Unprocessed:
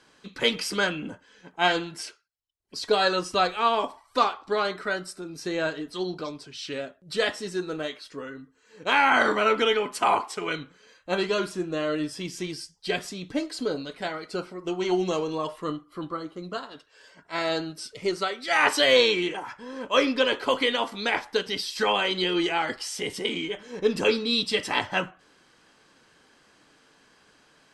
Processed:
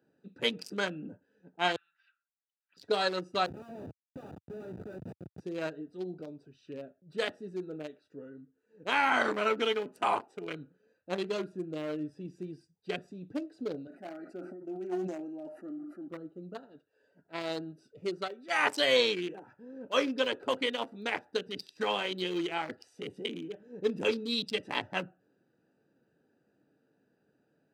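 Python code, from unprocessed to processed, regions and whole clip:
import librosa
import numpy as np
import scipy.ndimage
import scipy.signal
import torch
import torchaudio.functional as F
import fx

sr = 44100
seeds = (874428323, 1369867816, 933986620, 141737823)

y = fx.chain(x, sr, fx.ellip_bandpass(low_hz=1200.0, high_hz=3600.0, order=3, stop_db=50),
    fx.band_squash(depth_pct=100), at=(1.76, 2.77))
y = fx.chain(y, sr, fx.low_shelf(hz=100.0, db=8.5),
    fx.level_steps(step_db=11),
    fx.schmitt(flips_db=-39.0), at=(3.46, 5.4))
y = fx.chain(y, sr, fx.highpass(hz=170.0, slope=12),
    fx.fixed_phaser(hz=690.0, stages=8),
    fx.sustainer(db_per_s=30.0), at=(13.87, 16.08))
y = fx.wiener(y, sr, points=41)
y = scipy.signal.sosfilt(scipy.signal.butter(4, 97.0, 'highpass', fs=sr, output='sos'), y)
y = fx.high_shelf(y, sr, hz=9900.0, db=8.0)
y = y * 10.0 ** (-6.0 / 20.0)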